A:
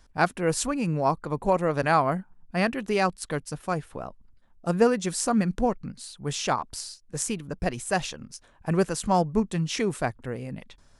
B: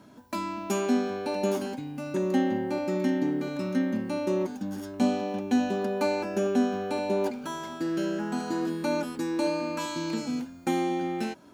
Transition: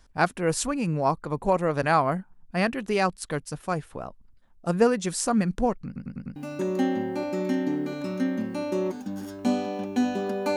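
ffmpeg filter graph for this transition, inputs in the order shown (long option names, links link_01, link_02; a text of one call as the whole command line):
ffmpeg -i cue0.wav -i cue1.wav -filter_complex "[0:a]apad=whole_dur=10.56,atrim=end=10.56,asplit=5[link_01][link_02][link_03][link_04][link_05];[link_01]atrim=end=5.962[link_06];[link_02]atrim=start=5.858:end=5.962[link_07];[link_03]atrim=start=5.858:end=5.962[link_08];[link_04]atrim=start=5.858:end=5.962[link_09];[link_05]atrim=start=5.858:end=5.962[link_10];[1:a]atrim=start=1.908:end=6.11[link_11];[link_06][link_07]acrossfade=duration=0.004:curve1=hsin:curve2=hsin[link_12];[link_12][link_08]acrossfade=duration=0.004:curve1=hsin:curve2=hsin[link_13];[link_13][link_09]acrossfade=duration=0.004:curve1=hsin:curve2=hsin[link_14];[link_14][link_10]acrossfade=duration=0.004:curve1=hsin:curve2=hsin[link_15];[link_15][link_11]acrossfade=duration=0.004:curve1=hsin:curve2=hsin" out.wav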